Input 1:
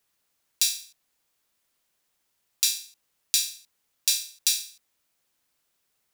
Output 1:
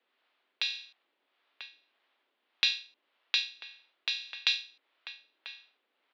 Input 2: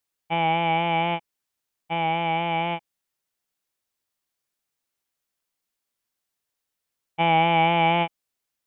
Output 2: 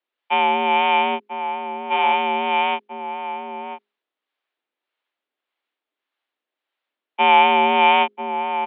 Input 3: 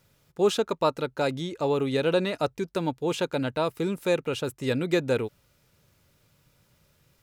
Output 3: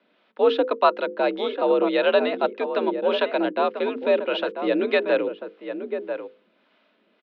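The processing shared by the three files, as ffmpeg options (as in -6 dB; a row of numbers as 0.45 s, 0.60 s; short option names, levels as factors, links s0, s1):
-filter_complex "[0:a]bandreject=f=50:t=h:w=6,bandreject=f=100:t=h:w=6,bandreject=f=150:t=h:w=6,bandreject=f=200:t=h:w=6,bandreject=f=250:t=h:w=6,bandreject=f=300:t=h:w=6,bandreject=f=350:t=h:w=6,bandreject=f=400:t=h:w=6,bandreject=f=450:t=h:w=6,aeval=exprs='(mod(1.5*val(0)+1,2)-1)/1.5':c=same,asplit=2[s0][s1];[s1]adelay=991.3,volume=0.398,highshelf=f=4000:g=-22.3[s2];[s0][s2]amix=inputs=2:normalize=0,acrossover=split=500[s3][s4];[s3]aeval=exprs='val(0)*(1-0.5/2+0.5/2*cos(2*PI*1.7*n/s))':c=same[s5];[s4]aeval=exprs='val(0)*(1-0.5/2-0.5/2*cos(2*PI*1.7*n/s))':c=same[s6];[s5][s6]amix=inputs=2:normalize=0,highpass=f=200:t=q:w=0.5412,highpass=f=200:t=q:w=1.307,lowpass=f=3600:t=q:w=0.5176,lowpass=f=3600:t=q:w=0.7071,lowpass=f=3600:t=q:w=1.932,afreqshift=61,volume=2.37"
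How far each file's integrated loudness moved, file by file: -6.0 LU, +4.5 LU, +4.0 LU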